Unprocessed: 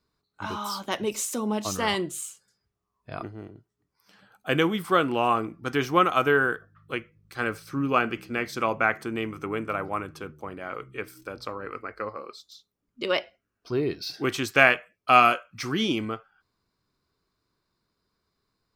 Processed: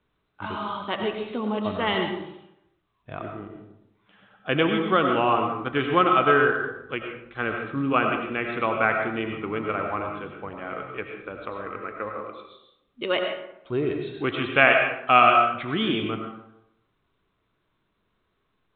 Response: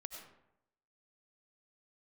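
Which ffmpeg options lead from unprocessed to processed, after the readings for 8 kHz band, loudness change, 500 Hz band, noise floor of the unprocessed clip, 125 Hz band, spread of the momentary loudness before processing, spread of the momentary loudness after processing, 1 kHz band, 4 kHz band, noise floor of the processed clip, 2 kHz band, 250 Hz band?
under -40 dB, +2.0 dB, +2.5 dB, -81 dBFS, +1.5 dB, 18 LU, 18 LU, +2.5 dB, +1.0 dB, -73 dBFS, +1.5 dB, +2.0 dB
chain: -filter_complex "[1:a]atrim=start_sample=2205[s0];[0:a][s0]afir=irnorm=-1:irlink=0,volume=1.88" -ar 8000 -c:a pcm_mulaw

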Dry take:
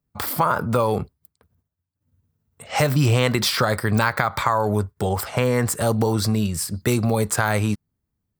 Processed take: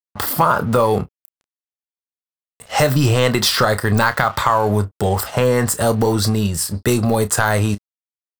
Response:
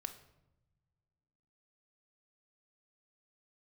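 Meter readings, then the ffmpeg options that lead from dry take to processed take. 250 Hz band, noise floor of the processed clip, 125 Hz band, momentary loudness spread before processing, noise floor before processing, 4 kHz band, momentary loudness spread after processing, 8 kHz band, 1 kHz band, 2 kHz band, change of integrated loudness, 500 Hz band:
+3.5 dB, under -85 dBFS, +3.0 dB, 6 LU, -80 dBFS, +5.0 dB, 5 LU, +5.0 dB, +5.0 dB, +4.0 dB, +4.0 dB, +5.0 dB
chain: -filter_complex "[0:a]bandreject=f=2300:w=7.2,acontrast=49,asubboost=boost=4.5:cutoff=56,aeval=exprs='sgn(val(0))*max(abs(val(0))-0.0126,0)':c=same,asplit=2[s0][s1];[s1]adelay=30,volume=0.237[s2];[s0][s2]amix=inputs=2:normalize=0"

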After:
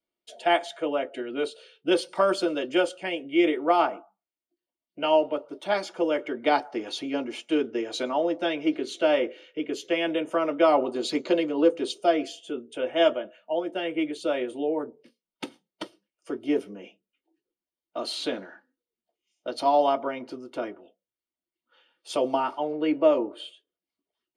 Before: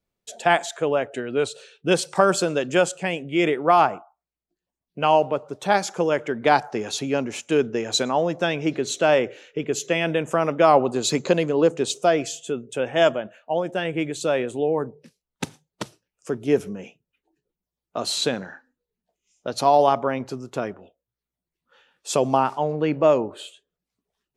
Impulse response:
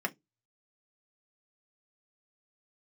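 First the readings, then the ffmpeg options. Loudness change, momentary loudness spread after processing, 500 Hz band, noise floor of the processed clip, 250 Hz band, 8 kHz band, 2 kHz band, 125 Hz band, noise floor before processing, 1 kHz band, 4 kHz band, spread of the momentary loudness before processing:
-4.0 dB, 15 LU, -4.0 dB, under -85 dBFS, -1.5 dB, -14.0 dB, -6.0 dB, -18.0 dB, under -85 dBFS, -5.5 dB, -4.0 dB, 14 LU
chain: -filter_complex "[1:a]atrim=start_sample=2205,asetrate=74970,aresample=44100[s0];[0:a][s0]afir=irnorm=-1:irlink=0,volume=0.531"

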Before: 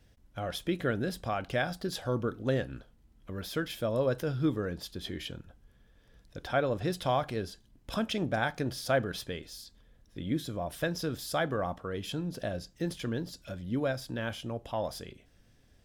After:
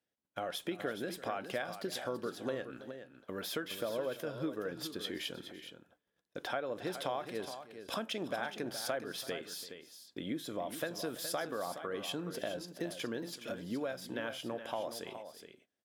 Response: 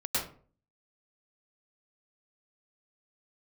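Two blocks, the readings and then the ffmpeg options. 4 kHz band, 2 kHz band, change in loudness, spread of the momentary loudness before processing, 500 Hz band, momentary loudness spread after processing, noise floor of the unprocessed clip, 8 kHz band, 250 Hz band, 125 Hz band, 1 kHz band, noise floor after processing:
-1.5 dB, -5.5 dB, -6.0 dB, 12 LU, -5.5 dB, 10 LU, -63 dBFS, 0.0 dB, -7.0 dB, -14.5 dB, -5.5 dB, -85 dBFS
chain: -af "agate=range=0.0708:threshold=0.002:ratio=16:detection=peak,highpass=290,equalizer=f=5100:w=1.4:g=-3,acompressor=threshold=0.0112:ratio=4,aecho=1:1:336|419:0.133|0.316,volume=1.5"

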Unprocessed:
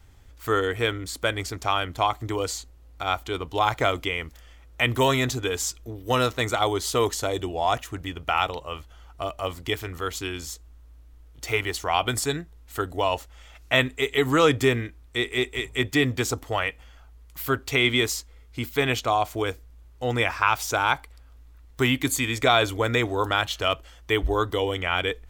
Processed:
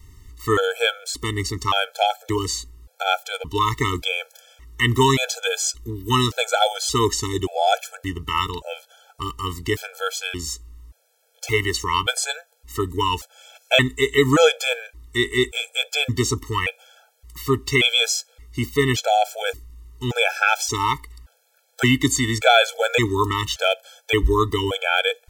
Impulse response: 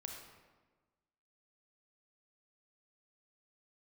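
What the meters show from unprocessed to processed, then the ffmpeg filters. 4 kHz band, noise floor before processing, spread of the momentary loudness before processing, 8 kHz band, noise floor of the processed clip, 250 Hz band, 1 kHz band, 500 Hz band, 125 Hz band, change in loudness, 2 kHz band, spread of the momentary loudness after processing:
+5.5 dB, -50 dBFS, 11 LU, +6.0 dB, -63 dBFS, +3.5 dB, +3.0 dB, +3.0 dB, +4.0 dB, +4.0 dB, +3.5 dB, 12 LU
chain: -filter_complex "[0:a]acrossover=split=7700[s0][s1];[s1]acompressor=threshold=0.00398:ratio=4:attack=1:release=60[s2];[s0][s2]amix=inputs=2:normalize=0,bass=f=250:g=1,treble=f=4000:g=7,afftfilt=real='re*gt(sin(2*PI*0.87*pts/sr)*(1-2*mod(floor(b*sr/1024/440),2)),0)':imag='im*gt(sin(2*PI*0.87*pts/sr)*(1-2*mod(floor(b*sr/1024/440),2)),0)':win_size=1024:overlap=0.75,volume=2"

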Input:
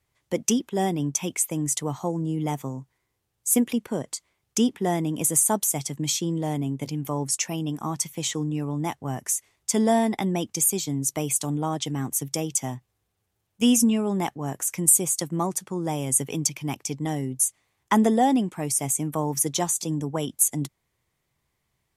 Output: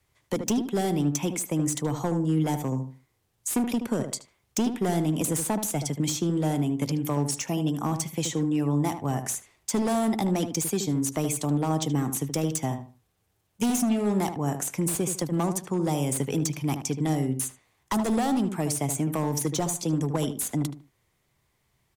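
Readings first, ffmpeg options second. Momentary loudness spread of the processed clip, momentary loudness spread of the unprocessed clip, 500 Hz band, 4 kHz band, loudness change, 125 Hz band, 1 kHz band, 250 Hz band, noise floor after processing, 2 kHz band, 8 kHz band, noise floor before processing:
5 LU, 10 LU, -1.0 dB, -3.5 dB, -2.5 dB, +2.0 dB, -2.5 dB, -0.5 dB, -72 dBFS, -2.0 dB, -7.0 dB, -77 dBFS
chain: -filter_complex "[0:a]asoftclip=type=hard:threshold=0.0891,acrossover=split=270|1200|3900[s0][s1][s2][s3];[s0]acompressor=threshold=0.0282:ratio=4[s4];[s1]acompressor=threshold=0.0251:ratio=4[s5];[s2]acompressor=threshold=0.00447:ratio=4[s6];[s3]acompressor=threshold=0.0178:ratio=4[s7];[s4][s5][s6][s7]amix=inputs=4:normalize=0,asplit=2[s8][s9];[s9]adelay=76,lowpass=f=1600:p=1,volume=0.422,asplit=2[s10][s11];[s11]adelay=76,lowpass=f=1600:p=1,volume=0.26,asplit=2[s12][s13];[s13]adelay=76,lowpass=f=1600:p=1,volume=0.26[s14];[s8][s10][s12][s14]amix=inputs=4:normalize=0,volume=1.58"

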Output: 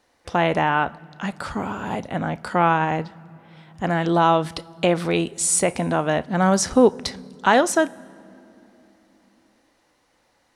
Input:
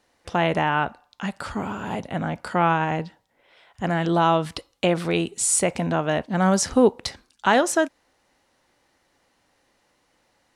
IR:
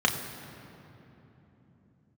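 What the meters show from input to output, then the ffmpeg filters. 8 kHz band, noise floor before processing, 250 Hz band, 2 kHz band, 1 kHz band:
+1.0 dB, -67 dBFS, +1.5 dB, +1.5 dB, +2.5 dB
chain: -filter_complex "[0:a]asplit=2[s0][s1];[1:a]atrim=start_sample=2205,highshelf=f=3400:g=9.5[s2];[s1][s2]afir=irnorm=-1:irlink=0,volume=0.0282[s3];[s0][s3]amix=inputs=2:normalize=0,volume=1.19"

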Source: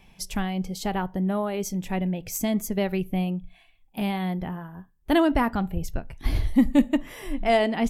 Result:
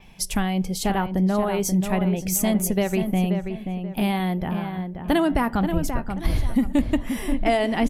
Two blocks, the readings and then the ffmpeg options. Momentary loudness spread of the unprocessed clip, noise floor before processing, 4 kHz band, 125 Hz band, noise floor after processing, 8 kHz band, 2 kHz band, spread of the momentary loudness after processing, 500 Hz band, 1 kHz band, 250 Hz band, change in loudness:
13 LU, -59 dBFS, +3.0 dB, +4.5 dB, -35 dBFS, +7.5 dB, +2.0 dB, 6 LU, +2.0 dB, +2.5 dB, +2.5 dB, +2.5 dB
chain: -filter_complex "[0:a]adynamicequalizer=threshold=0.00178:dfrequency=9800:dqfactor=1.9:tfrequency=9800:tqfactor=1.9:attack=5:release=100:ratio=0.375:range=4:mode=boostabove:tftype=bell,acompressor=threshold=0.0794:ratio=6,asplit=2[s0][s1];[s1]adelay=532,lowpass=f=2300:p=1,volume=0.447,asplit=2[s2][s3];[s3]adelay=532,lowpass=f=2300:p=1,volume=0.33,asplit=2[s4][s5];[s5]adelay=532,lowpass=f=2300:p=1,volume=0.33,asplit=2[s6][s7];[s7]adelay=532,lowpass=f=2300:p=1,volume=0.33[s8];[s0][s2][s4][s6][s8]amix=inputs=5:normalize=0,volume=1.78"

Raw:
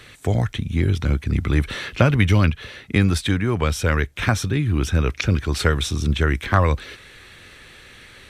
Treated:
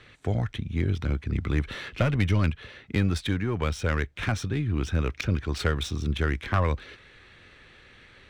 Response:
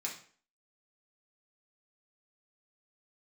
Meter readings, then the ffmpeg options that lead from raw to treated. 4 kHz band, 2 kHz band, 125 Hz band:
-7.5 dB, -7.5 dB, -7.0 dB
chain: -af "aeval=exprs='(tanh(2.24*val(0)+0.35)-tanh(0.35))/2.24':c=same,adynamicsmooth=sensitivity=4:basefreq=4500,volume=0.531"

